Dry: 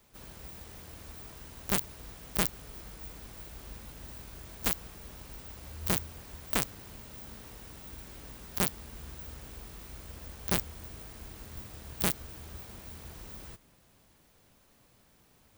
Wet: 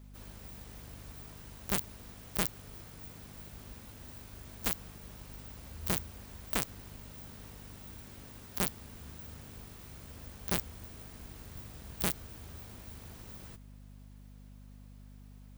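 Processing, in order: mains buzz 50 Hz, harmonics 5, -49 dBFS -5 dB/octave; trim -3 dB

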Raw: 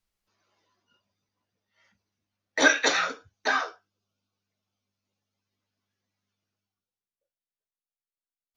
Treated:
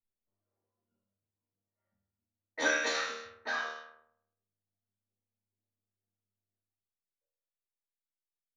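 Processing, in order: chord resonator D#2 major, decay 0.83 s; level-controlled noise filter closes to 580 Hz, open at -43 dBFS; trim +8.5 dB

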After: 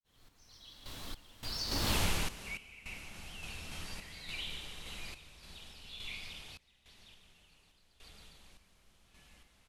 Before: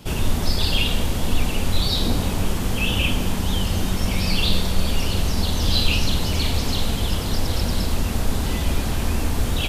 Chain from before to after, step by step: fade-in on the opening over 1.09 s; Doppler pass-by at 1.97 s, 56 m/s, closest 4.9 m; tilt shelf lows -9.5 dB, about 1.2 kHz; feedback delay 145 ms, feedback 42%, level -7.5 dB; random-step tremolo 3.5 Hz, depth 95%; compression 2:1, threshold -43 dBFS, peak gain reduction 10.5 dB; treble shelf 3.8 kHz -11 dB; trim +10.5 dB

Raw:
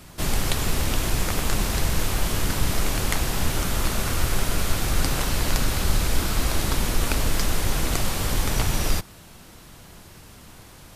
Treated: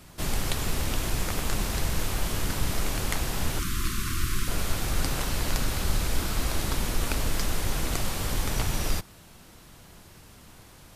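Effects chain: 3.59–4.48 s: brick-wall FIR band-stop 390–1000 Hz; trim -4.5 dB

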